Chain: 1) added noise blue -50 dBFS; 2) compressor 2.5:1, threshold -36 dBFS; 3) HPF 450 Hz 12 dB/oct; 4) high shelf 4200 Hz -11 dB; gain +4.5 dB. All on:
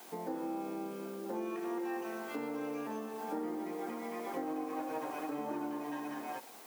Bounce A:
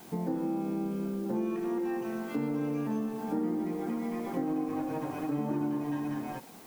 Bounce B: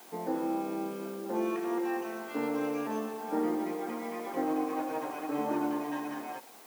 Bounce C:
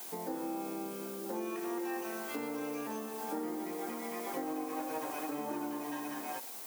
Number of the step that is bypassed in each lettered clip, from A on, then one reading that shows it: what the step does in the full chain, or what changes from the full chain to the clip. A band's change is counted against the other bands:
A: 3, 125 Hz band +15.0 dB; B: 2, mean gain reduction 4.5 dB; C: 4, 8 kHz band +8.5 dB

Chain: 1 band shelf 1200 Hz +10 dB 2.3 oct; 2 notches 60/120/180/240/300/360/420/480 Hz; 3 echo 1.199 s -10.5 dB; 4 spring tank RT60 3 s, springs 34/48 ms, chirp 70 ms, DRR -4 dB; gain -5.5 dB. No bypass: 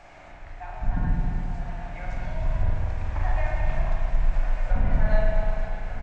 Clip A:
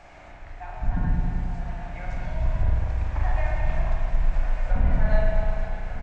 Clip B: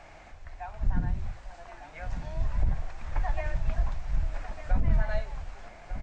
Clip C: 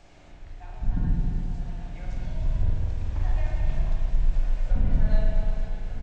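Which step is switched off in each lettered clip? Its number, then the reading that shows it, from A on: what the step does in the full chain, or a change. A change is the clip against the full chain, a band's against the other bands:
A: 2, loudness change +1.0 LU; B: 4, momentary loudness spread change +6 LU; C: 1, 125 Hz band +9.0 dB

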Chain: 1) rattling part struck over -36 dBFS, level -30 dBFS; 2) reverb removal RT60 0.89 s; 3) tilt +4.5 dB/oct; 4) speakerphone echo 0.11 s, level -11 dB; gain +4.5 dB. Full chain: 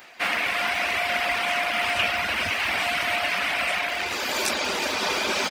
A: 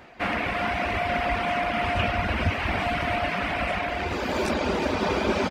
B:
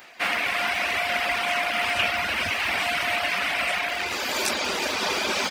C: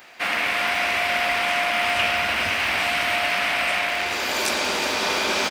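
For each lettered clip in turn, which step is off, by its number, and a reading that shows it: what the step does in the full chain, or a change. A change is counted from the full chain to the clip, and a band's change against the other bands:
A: 3, 125 Hz band +16.5 dB; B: 4, echo-to-direct -12.0 dB to none; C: 2, loudness change +2.5 LU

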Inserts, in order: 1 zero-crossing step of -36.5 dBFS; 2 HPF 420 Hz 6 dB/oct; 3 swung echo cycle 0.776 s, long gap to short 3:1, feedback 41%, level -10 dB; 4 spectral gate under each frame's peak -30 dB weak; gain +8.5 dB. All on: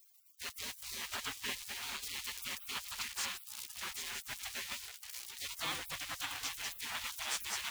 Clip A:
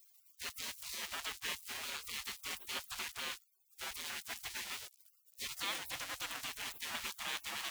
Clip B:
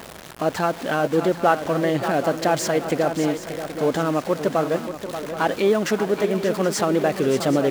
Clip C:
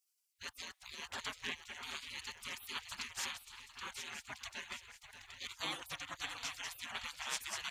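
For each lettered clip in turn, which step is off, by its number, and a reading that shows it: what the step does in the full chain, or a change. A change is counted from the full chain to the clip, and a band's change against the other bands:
3, loudness change -1.5 LU; 4, 4 kHz band -22.0 dB; 1, distortion -17 dB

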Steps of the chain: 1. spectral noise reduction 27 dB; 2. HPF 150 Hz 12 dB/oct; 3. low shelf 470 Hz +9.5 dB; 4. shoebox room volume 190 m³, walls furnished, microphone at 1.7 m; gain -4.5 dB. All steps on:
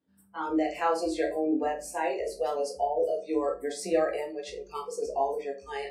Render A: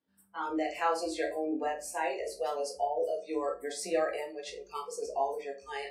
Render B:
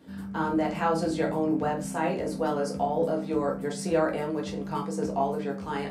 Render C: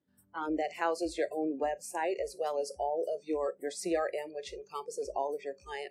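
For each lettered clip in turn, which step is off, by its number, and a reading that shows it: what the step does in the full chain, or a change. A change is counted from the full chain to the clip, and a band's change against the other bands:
3, 250 Hz band -6.0 dB; 1, 250 Hz band +3.5 dB; 4, 250 Hz band -3.0 dB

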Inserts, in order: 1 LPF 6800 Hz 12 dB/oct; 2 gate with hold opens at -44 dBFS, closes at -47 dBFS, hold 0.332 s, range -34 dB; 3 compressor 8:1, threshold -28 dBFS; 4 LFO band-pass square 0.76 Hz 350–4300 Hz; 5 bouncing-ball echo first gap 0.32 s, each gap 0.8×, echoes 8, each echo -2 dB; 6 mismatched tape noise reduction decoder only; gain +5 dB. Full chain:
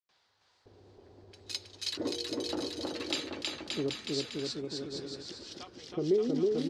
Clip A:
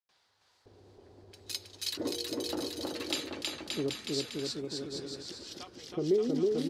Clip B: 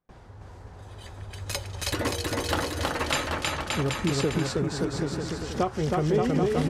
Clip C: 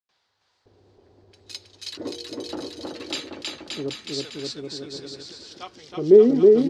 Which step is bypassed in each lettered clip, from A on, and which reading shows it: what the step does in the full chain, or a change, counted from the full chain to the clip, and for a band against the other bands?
1, 8 kHz band +3.0 dB; 4, 1 kHz band +9.5 dB; 3, mean gain reduction 2.5 dB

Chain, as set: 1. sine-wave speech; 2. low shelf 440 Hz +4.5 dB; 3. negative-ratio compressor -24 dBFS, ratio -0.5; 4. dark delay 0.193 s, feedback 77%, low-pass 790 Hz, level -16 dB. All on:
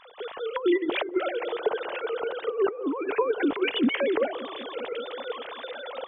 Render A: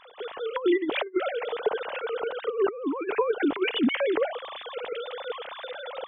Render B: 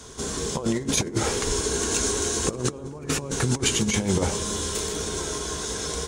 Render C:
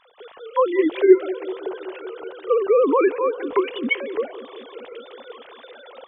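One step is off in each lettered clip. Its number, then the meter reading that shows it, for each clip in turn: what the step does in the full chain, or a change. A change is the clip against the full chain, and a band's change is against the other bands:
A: 4, echo-to-direct -19.0 dB to none; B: 1, 500 Hz band -2.5 dB; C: 3, crest factor change +3.5 dB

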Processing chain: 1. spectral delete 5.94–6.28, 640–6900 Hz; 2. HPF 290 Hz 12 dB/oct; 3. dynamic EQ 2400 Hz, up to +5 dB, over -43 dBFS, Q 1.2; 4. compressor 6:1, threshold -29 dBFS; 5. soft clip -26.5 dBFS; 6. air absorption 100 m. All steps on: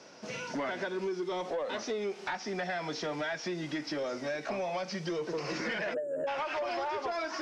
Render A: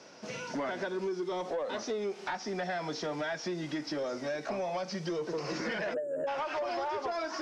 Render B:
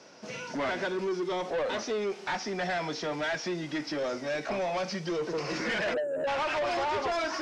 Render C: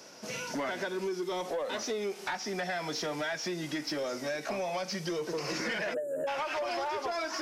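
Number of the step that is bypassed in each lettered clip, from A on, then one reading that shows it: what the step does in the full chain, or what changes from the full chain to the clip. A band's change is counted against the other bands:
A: 3, 2 kHz band -2.0 dB; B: 4, crest factor change -3.0 dB; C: 6, 8 kHz band +6.0 dB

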